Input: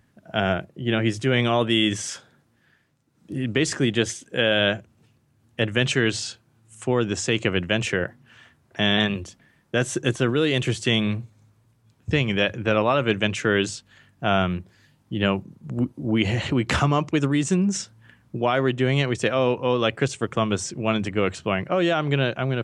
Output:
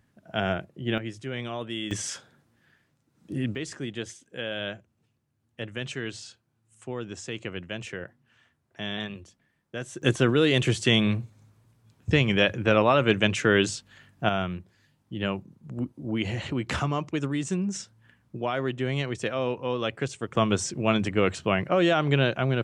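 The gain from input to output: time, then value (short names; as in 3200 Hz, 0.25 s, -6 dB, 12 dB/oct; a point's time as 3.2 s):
-4.5 dB
from 0.98 s -13 dB
from 1.91 s -2 dB
from 3.55 s -12.5 dB
from 10.02 s 0 dB
from 14.29 s -7 dB
from 20.35 s -0.5 dB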